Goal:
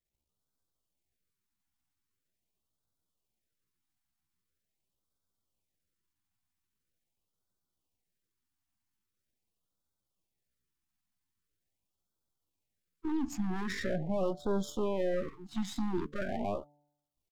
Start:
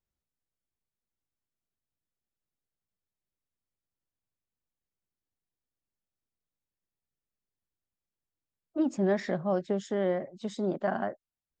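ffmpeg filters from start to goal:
-af "aeval=exprs='if(lt(val(0),0),0.251*val(0),val(0))':c=same,alimiter=level_in=4.5dB:limit=-24dB:level=0:latency=1:release=40,volume=-4.5dB,bandreject=f=146.3:t=h:w=4,bandreject=f=292.6:t=h:w=4,bandreject=f=438.9:t=h:w=4,bandreject=f=585.2:t=h:w=4,bandreject=f=731.5:t=h:w=4,bandreject=f=877.8:t=h:w=4,atempo=0.67,afftfilt=real='re*(1-between(b*sr/1024,460*pow(2300/460,0.5+0.5*sin(2*PI*0.43*pts/sr))/1.41,460*pow(2300/460,0.5+0.5*sin(2*PI*0.43*pts/sr))*1.41))':imag='im*(1-between(b*sr/1024,460*pow(2300/460,0.5+0.5*sin(2*PI*0.43*pts/sr))/1.41,460*pow(2300/460,0.5+0.5*sin(2*PI*0.43*pts/sr))*1.41))':win_size=1024:overlap=0.75,volume=6dB"

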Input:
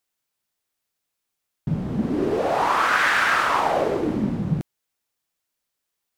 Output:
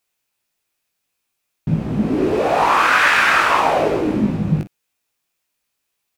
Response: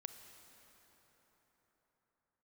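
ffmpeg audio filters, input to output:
-filter_complex "[0:a]equalizer=f=2.5k:t=o:w=0.23:g=6.5,asplit=2[a][b];[b]aecho=0:1:19|50|60:0.596|0.178|0.141[c];[a][c]amix=inputs=2:normalize=0,volume=3.5dB"

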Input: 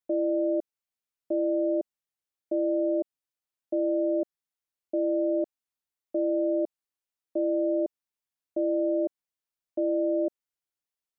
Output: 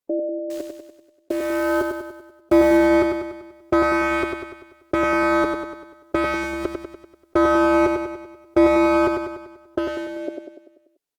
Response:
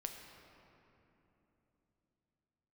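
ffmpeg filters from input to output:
-filter_complex "[0:a]equalizer=f=380:t=o:w=0.96:g=10,alimiter=limit=-17dB:level=0:latency=1:release=239,dynaudnorm=f=320:g=11:m=12dB,volume=14dB,asoftclip=hard,volume=-14dB,flanger=delay=7:depth=1.3:regen=-1:speed=0.18:shape=triangular,asettb=1/sr,asplit=3[a][b][c];[a]atrim=end=0.504[d];[b]atrim=start=0.5:end=2.77,asetpts=PTS-STARTPTS,afade=t=in:d=0.004:c=qsin,afade=t=out:st=2.266:d=0.004:c=qsin,acrusher=bits=8:dc=4:mix=0:aa=0.000001[e];[c]atrim=start=2.766[f];[d][e]acrossfade=d=0.004:c1=hsin:c2=qsin[g];[g][f]acrossfade=d=0.004:c1=qsin:c2=hsin,aecho=1:1:97|194|291|388|485|582|679:0.562|0.304|0.164|0.0885|0.0478|0.0258|0.0139,volume=6dB" -ar 48000 -c:a libopus -b:a 64k

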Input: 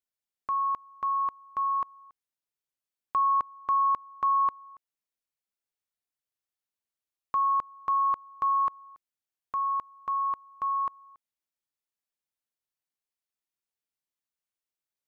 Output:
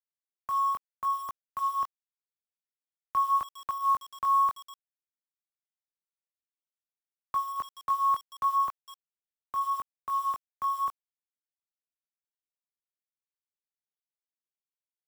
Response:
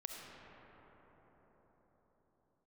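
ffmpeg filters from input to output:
-filter_complex "[0:a]acrossover=split=200|520[a][b][c];[b]alimiter=level_in=24dB:limit=-24dB:level=0:latency=1:release=252,volume=-24dB[d];[c]flanger=delay=19.5:depth=3.2:speed=0.8[e];[a][d][e]amix=inputs=3:normalize=0,acrusher=bits=7:mix=0:aa=0.000001,volume=1.5dB"

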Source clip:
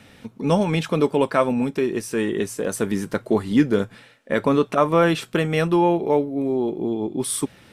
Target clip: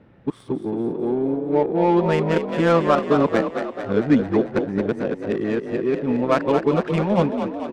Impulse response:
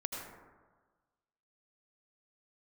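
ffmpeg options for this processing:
-filter_complex "[0:a]areverse,adynamicsmooth=sensitivity=1:basefreq=1.1k,asplit=9[a][b][c][d][e][f][g][h][i];[b]adelay=221,afreqshift=40,volume=-7.5dB[j];[c]adelay=442,afreqshift=80,volume=-11.8dB[k];[d]adelay=663,afreqshift=120,volume=-16.1dB[l];[e]adelay=884,afreqshift=160,volume=-20.4dB[m];[f]adelay=1105,afreqshift=200,volume=-24.7dB[n];[g]adelay=1326,afreqshift=240,volume=-29dB[o];[h]adelay=1547,afreqshift=280,volume=-33.3dB[p];[i]adelay=1768,afreqshift=320,volume=-37.6dB[q];[a][j][k][l][m][n][o][p][q]amix=inputs=9:normalize=0"

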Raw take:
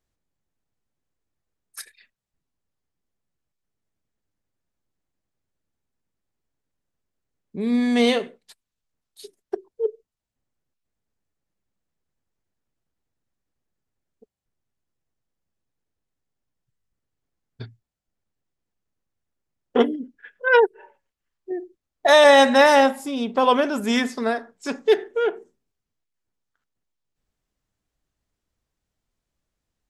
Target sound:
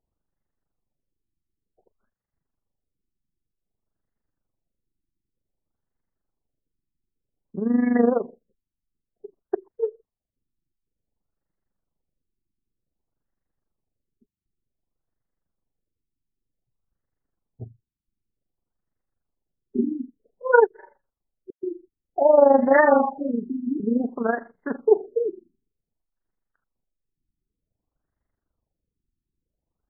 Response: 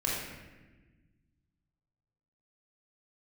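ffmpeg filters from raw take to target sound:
-filter_complex "[0:a]tremolo=f=24:d=0.71,asettb=1/sr,asplit=3[a][b][c];[a]atrim=end=21.504[d];[b]atrim=start=21.5:end=23.8,asetpts=PTS-STARTPTS,afade=t=in:d=0.004:c=qsin,afade=t=out:st=2.296:d=0.004:c=qsin,acrossover=split=940|4700[e][f][g];[e]adelay=130[h];[f]adelay=660[i];[h][i][g]amix=inputs=3:normalize=0,atrim=end_sample=101430[j];[c]atrim=start=23.796[k];[d][j]acrossfade=d=0.004:c1=hsin:c2=qsin[l];[l][k]acrossfade=d=0.004:c1=qsin:c2=hsin,afftfilt=real='re*lt(b*sr/1024,380*pow(2200/380,0.5+0.5*sin(2*PI*0.54*pts/sr)))':imag='im*lt(b*sr/1024,380*pow(2200/380,0.5+0.5*sin(2*PI*0.54*pts/sr)))':win_size=1024:overlap=0.75,volume=3dB"

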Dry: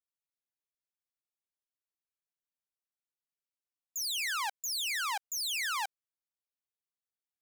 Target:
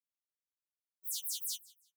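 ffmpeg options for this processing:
-af "highpass=1.1k,asetrate=166257,aresample=44100,aecho=1:1:169|338:0.0794|0.0214,afftfilt=real='re*2.83*eq(mod(b,8),0)':imag='im*2.83*eq(mod(b,8),0)':win_size=2048:overlap=0.75"

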